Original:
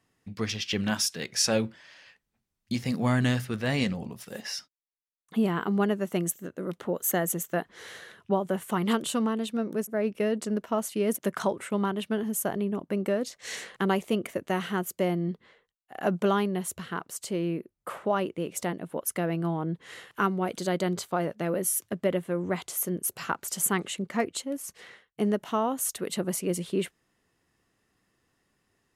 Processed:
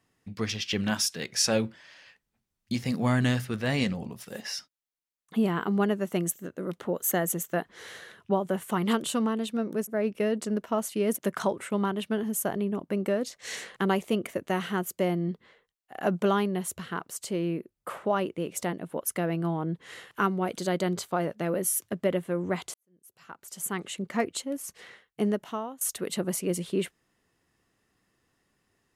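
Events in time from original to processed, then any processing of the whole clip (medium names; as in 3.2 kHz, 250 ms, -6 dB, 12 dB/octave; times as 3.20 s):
22.74–24.11 s: fade in quadratic
25.25–25.81 s: fade out, to -19.5 dB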